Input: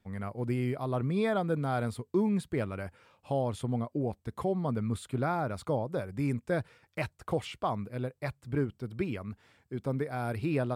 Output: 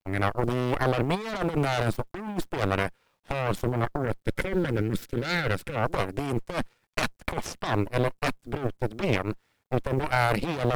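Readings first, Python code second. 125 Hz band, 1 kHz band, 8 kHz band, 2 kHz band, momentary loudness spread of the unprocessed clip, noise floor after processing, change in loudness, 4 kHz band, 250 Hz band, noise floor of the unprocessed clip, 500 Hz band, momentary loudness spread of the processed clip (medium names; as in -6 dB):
+4.0 dB, +6.5 dB, +8.5 dB, +10.5 dB, 8 LU, -72 dBFS, +4.5 dB, +11.5 dB, +2.0 dB, -73 dBFS, +4.0 dB, 8 LU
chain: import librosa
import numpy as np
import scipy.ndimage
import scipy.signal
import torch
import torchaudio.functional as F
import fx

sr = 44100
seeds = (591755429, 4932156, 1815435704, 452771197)

y = fx.cheby_harmonics(x, sr, harmonics=(5, 6, 7, 8), levels_db=(-18, -38, -12, -10), full_scale_db=-17.5)
y = fx.over_compress(y, sr, threshold_db=-30.0, ratio=-0.5)
y = fx.spec_box(y, sr, start_s=4.02, length_s=1.73, low_hz=560.0, high_hz=1300.0, gain_db=-10)
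y = fx.quant_companded(y, sr, bits=8)
y = y * librosa.db_to_amplitude(5.0)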